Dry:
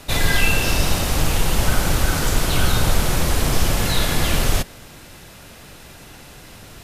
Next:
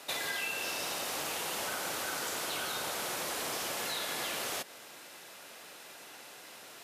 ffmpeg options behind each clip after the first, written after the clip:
-af "highpass=440,acompressor=threshold=0.0447:ratio=6,volume=0.501"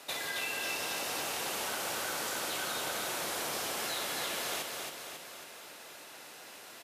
-af "aecho=1:1:273|546|819|1092|1365|1638|1911:0.631|0.341|0.184|0.0994|0.0537|0.029|0.0156,volume=0.841"

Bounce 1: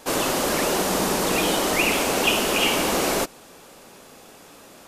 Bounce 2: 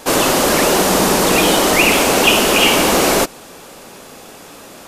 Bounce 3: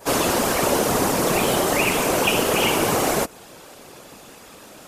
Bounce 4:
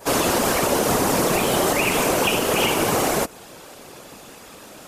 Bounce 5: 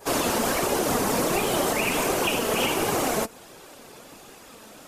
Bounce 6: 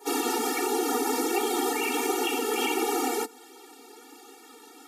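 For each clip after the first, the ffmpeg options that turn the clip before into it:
-af "acontrast=76,volume=1.33"
-af "afftfilt=real='hypot(re,im)*cos(2*PI*random(0))':imag='hypot(re,im)*sin(2*PI*random(1))':win_size=512:overlap=0.75,adynamicequalizer=threshold=0.0224:dfrequency=3800:dqfactor=0.75:tfrequency=3800:tqfactor=0.75:attack=5:release=100:ratio=0.375:range=2.5:mode=cutabove:tftype=bell"
-af "alimiter=limit=0.282:level=0:latency=1:release=101,volume=1.19"
-af "flanger=delay=2.4:depth=2.2:regen=66:speed=1.4:shape=sinusoidal"
-af "afftfilt=real='re*eq(mod(floor(b*sr/1024/240),2),1)':imag='im*eq(mod(floor(b*sr/1024/240),2),1)':win_size=1024:overlap=0.75"

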